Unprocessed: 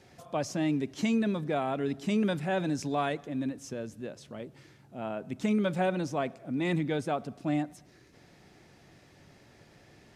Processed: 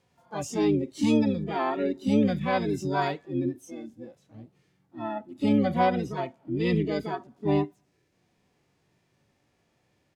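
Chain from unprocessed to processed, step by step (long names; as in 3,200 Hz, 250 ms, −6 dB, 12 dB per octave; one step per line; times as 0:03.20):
pitch-shifted copies added −12 semitones −12 dB, +5 semitones −2 dB, +12 semitones −15 dB
dynamic equaliser 6,600 Hz, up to +7 dB, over −60 dBFS, Q 2.4
harmonic and percussive parts rebalanced percussive −12 dB
noise reduction from a noise print of the clip's start 15 dB
level +3.5 dB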